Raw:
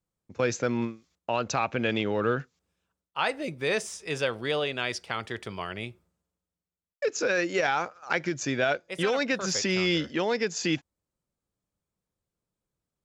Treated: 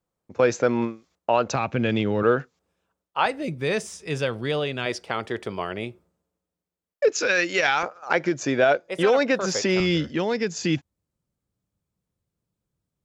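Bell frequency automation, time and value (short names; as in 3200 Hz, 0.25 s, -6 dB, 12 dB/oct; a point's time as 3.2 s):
bell +8.5 dB 2.7 oct
660 Hz
from 1.55 s 130 Hz
from 2.23 s 610 Hz
from 3.26 s 130 Hz
from 4.86 s 440 Hz
from 7.12 s 3100 Hz
from 7.83 s 570 Hz
from 9.8 s 110 Hz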